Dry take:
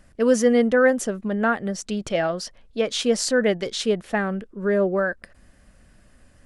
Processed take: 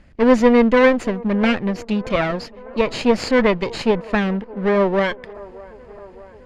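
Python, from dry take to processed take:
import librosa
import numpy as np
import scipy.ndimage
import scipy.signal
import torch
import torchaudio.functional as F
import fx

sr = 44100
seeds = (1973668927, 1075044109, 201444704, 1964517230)

y = fx.lower_of_two(x, sr, delay_ms=0.44)
y = scipy.signal.sosfilt(scipy.signal.butter(2, 3700.0, 'lowpass', fs=sr, output='sos'), y)
y = fx.echo_wet_bandpass(y, sr, ms=613, feedback_pct=69, hz=630.0, wet_db=-19)
y = y * 10.0 ** (5.5 / 20.0)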